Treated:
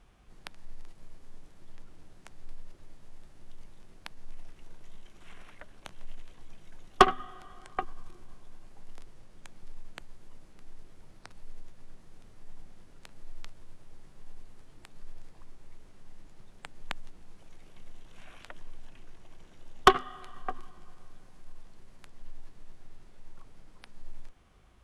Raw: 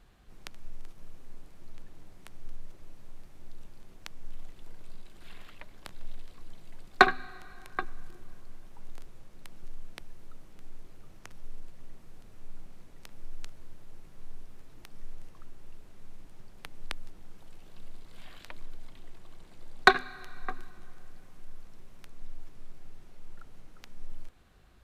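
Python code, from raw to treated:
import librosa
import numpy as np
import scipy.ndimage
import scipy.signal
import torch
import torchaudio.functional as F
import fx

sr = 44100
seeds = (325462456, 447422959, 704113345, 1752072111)

y = fx.formant_shift(x, sr, semitones=-4)
y = fx.cheby_harmonics(y, sr, harmonics=(6,), levels_db=(-19,), full_scale_db=-3.0)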